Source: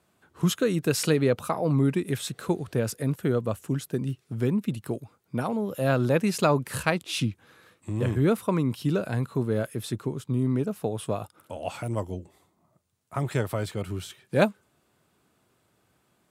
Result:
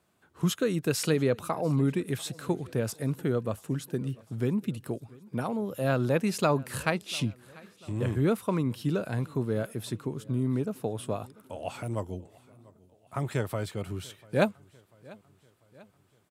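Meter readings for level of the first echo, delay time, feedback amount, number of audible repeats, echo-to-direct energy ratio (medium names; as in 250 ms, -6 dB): -23.5 dB, 693 ms, 54%, 3, -22.0 dB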